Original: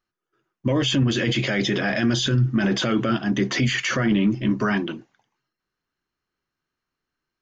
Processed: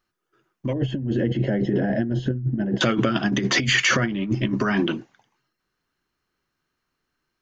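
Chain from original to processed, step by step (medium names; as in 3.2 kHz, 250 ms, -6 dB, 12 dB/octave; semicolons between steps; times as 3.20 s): compressor with a negative ratio -23 dBFS, ratio -0.5; 0.73–2.81 s: boxcar filter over 37 samples; trim +3 dB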